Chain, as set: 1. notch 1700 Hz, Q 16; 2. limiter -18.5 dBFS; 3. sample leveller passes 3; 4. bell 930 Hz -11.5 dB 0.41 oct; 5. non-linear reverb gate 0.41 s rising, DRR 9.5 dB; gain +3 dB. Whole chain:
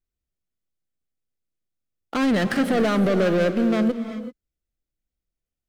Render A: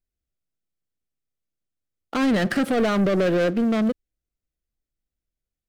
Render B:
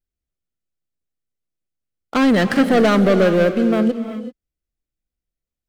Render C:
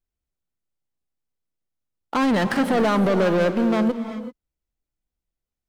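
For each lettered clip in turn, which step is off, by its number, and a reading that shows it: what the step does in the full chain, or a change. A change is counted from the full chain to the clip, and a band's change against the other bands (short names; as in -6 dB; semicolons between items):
5, momentary loudness spread change -6 LU; 2, mean gain reduction 2.0 dB; 4, 1 kHz band +4.5 dB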